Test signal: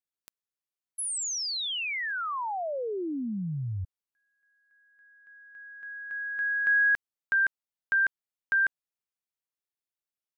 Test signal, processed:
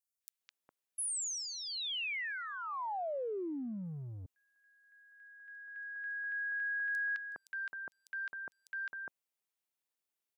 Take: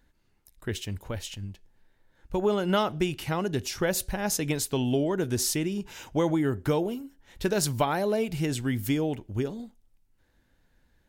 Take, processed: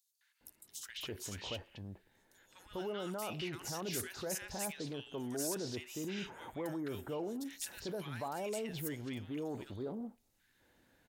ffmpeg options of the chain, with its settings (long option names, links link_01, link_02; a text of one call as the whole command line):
ffmpeg -i in.wav -filter_complex "[0:a]areverse,acompressor=threshold=-39dB:ratio=6:attack=0.55:release=24:knee=6:detection=peak,areverse,highpass=frequency=270:poles=1,acrossover=split=1400|4900[link_01][link_02][link_03];[link_02]adelay=210[link_04];[link_01]adelay=410[link_05];[link_05][link_04][link_03]amix=inputs=3:normalize=0,volume=4dB" out.wav